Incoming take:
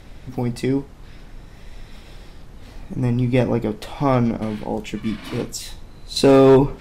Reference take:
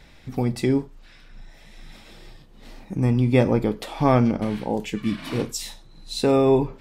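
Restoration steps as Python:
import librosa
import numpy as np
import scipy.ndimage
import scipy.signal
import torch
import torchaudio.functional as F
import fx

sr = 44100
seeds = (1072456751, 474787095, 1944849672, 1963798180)

y = fx.fix_declip(x, sr, threshold_db=-6.5)
y = fx.noise_reduce(y, sr, print_start_s=0.83, print_end_s=1.33, reduce_db=6.0)
y = fx.fix_level(y, sr, at_s=6.16, step_db=-7.0)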